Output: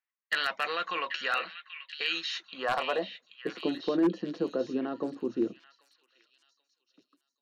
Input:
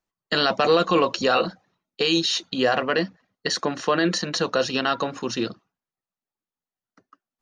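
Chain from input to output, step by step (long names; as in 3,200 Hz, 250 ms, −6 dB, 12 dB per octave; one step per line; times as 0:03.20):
band-pass filter sweep 2,000 Hz → 320 Hz, 0:02.30–0:03.49
wave folding −18.5 dBFS
echo through a band-pass that steps 785 ms, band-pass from 2,500 Hz, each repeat 0.7 octaves, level −6.5 dB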